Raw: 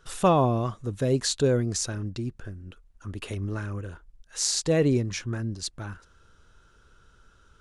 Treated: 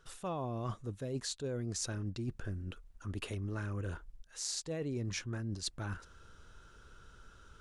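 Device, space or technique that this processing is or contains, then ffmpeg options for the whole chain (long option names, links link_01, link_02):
compression on the reversed sound: -af "areverse,acompressor=threshold=-36dB:ratio=12,areverse,volume=1dB"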